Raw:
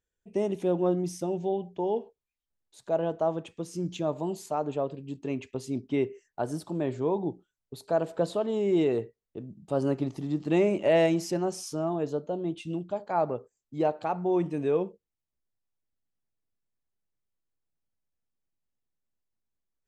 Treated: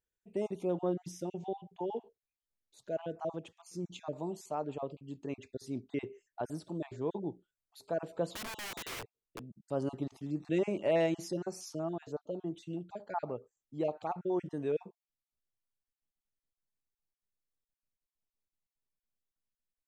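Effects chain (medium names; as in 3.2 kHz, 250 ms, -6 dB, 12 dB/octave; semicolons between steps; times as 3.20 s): random holes in the spectrogram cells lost 22%; 8.32–9.59 s: integer overflow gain 30 dB; trim -6.5 dB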